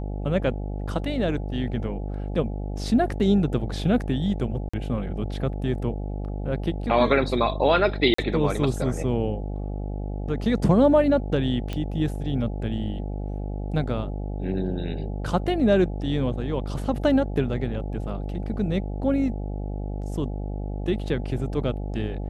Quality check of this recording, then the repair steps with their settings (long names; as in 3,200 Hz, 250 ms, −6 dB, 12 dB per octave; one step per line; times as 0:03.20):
mains buzz 50 Hz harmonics 17 −30 dBFS
0:04.69–0:04.74: drop-out 45 ms
0:08.14–0:08.18: drop-out 44 ms
0:11.73: click −17 dBFS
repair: click removal
hum removal 50 Hz, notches 17
repair the gap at 0:04.69, 45 ms
repair the gap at 0:08.14, 44 ms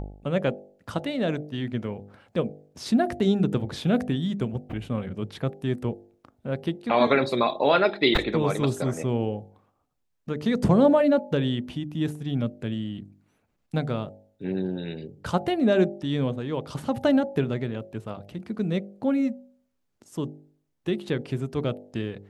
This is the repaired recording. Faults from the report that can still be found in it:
none of them is left